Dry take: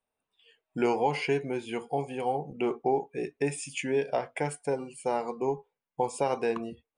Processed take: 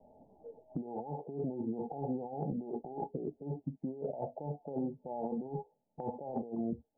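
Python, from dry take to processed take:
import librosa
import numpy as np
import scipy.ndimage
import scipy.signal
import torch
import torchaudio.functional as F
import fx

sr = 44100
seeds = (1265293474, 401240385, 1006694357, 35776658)

y = fx.over_compress(x, sr, threshold_db=-39.0, ratio=-1.0)
y = scipy.signal.sosfilt(scipy.signal.cheby1(6, 6, 880.0, 'lowpass', fs=sr, output='sos'), y)
y = fx.band_squash(y, sr, depth_pct=70)
y = y * librosa.db_to_amplitude(3.0)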